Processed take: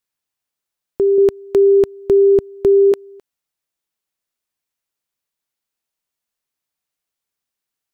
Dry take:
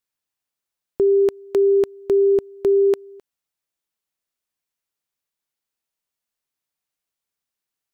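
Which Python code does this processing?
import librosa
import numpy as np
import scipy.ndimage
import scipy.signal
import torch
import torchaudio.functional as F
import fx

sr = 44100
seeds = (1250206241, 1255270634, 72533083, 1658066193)

y = fx.low_shelf(x, sr, hz=230.0, db=11.0, at=(1.18, 2.92))
y = y * librosa.db_to_amplitude(2.0)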